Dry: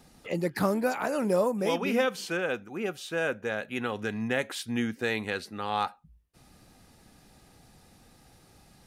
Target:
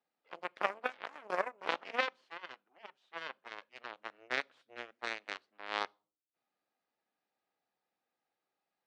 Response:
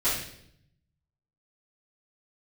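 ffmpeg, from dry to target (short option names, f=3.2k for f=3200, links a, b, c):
-filter_complex "[0:a]aeval=exprs='0.188*(cos(1*acos(clip(val(0)/0.188,-1,1)))-cos(1*PI/2))+0.0596*(cos(2*acos(clip(val(0)/0.188,-1,1)))-cos(2*PI/2))+0.075*(cos(3*acos(clip(val(0)/0.188,-1,1)))-cos(3*PI/2))+0.00841*(cos(4*acos(clip(val(0)/0.188,-1,1)))-cos(4*PI/2))+0.00531*(cos(5*acos(clip(val(0)/0.188,-1,1)))-cos(5*PI/2))':c=same,highpass=490,lowpass=3k,asplit=2[a][b];[1:a]atrim=start_sample=2205,asetrate=83790,aresample=44100[c];[b][c]afir=irnorm=-1:irlink=0,volume=-32dB[d];[a][d]amix=inputs=2:normalize=0"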